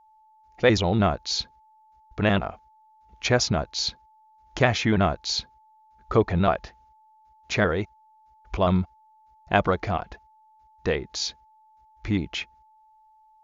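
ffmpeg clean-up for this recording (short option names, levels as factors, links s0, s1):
-af "bandreject=f=870:w=30"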